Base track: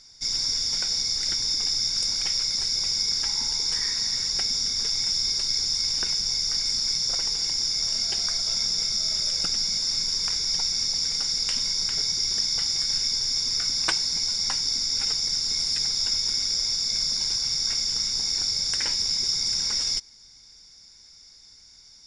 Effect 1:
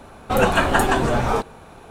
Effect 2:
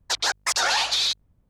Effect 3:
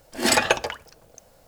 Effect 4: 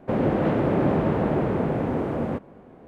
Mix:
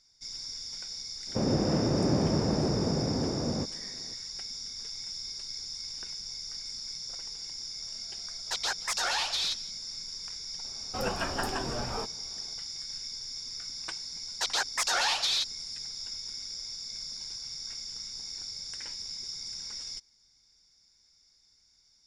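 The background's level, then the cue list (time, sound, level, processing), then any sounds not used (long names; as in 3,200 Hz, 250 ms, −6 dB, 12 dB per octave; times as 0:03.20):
base track −14 dB
0:01.27: mix in 4 −9 dB + low-shelf EQ 340 Hz +7 dB
0:08.41: mix in 2 −8 dB + single-tap delay 174 ms −21 dB
0:10.64: mix in 1 −15 dB
0:14.31: mix in 2 −5.5 dB + high-pass filter 130 Hz
not used: 3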